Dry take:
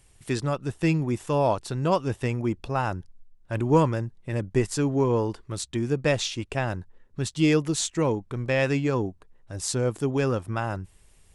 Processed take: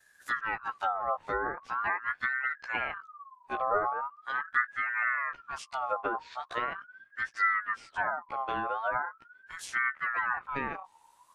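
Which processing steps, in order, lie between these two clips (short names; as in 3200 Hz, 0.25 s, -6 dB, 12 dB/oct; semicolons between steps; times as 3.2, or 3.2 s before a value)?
short-time reversal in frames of 32 ms; treble ducked by the level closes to 410 Hz, closed at -22 dBFS; ring modulator with a swept carrier 1300 Hz, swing 30%, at 0.41 Hz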